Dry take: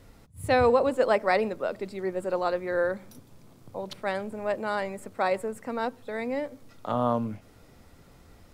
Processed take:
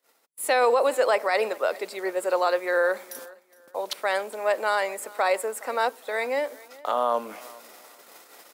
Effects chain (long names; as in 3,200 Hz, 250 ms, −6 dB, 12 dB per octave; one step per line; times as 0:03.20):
Bessel high-pass filter 590 Hz, order 4
noise gate −59 dBFS, range −32 dB
high-shelf EQ 9,500 Hz +10.5 dB
reversed playback
upward compression, threshold −45 dBFS
reversed playback
brickwall limiter −21.5 dBFS, peak gain reduction 10.5 dB
repeating echo 415 ms, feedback 26%, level −22 dB
level +8.5 dB